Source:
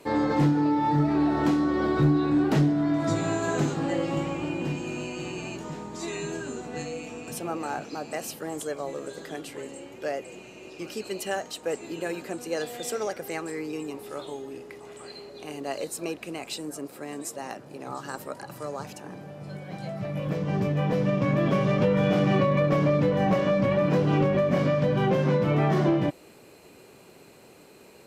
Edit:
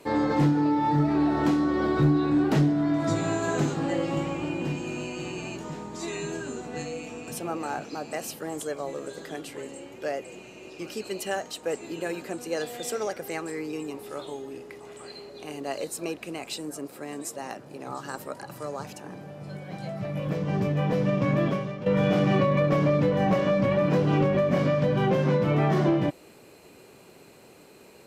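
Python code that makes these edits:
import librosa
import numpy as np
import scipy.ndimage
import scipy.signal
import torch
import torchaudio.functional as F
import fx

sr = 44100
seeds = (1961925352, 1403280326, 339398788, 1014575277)

y = fx.edit(x, sr, fx.fade_out_to(start_s=21.43, length_s=0.43, curve='qua', floor_db=-14.0), tone=tone)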